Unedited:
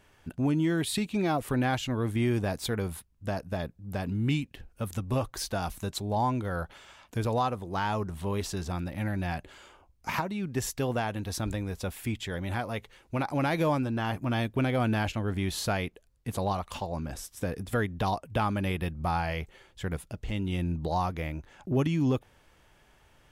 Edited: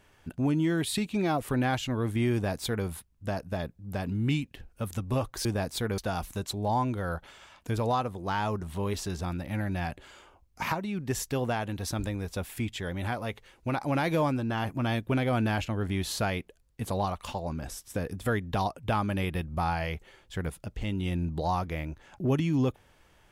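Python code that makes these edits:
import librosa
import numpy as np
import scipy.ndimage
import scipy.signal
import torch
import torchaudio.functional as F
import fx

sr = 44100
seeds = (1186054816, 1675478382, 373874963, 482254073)

y = fx.edit(x, sr, fx.duplicate(start_s=2.33, length_s=0.53, to_s=5.45), tone=tone)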